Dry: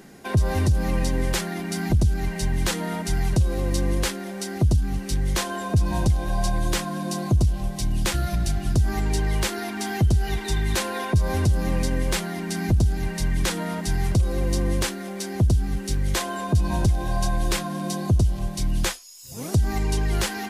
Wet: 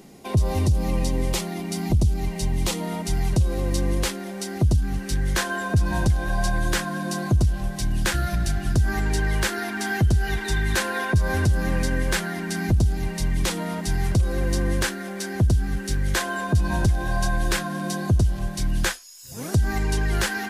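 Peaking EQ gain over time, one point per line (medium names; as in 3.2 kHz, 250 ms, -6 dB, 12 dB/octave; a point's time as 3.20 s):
peaking EQ 1.6 kHz 0.41 oct
2.80 s -12 dB
3.50 s -1.5 dB
4.47 s -1.5 dB
5.28 s +8.5 dB
12.34 s +8.5 dB
13.04 s -2.5 dB
13.69 s -2.5 dB
14.40 s +8 dB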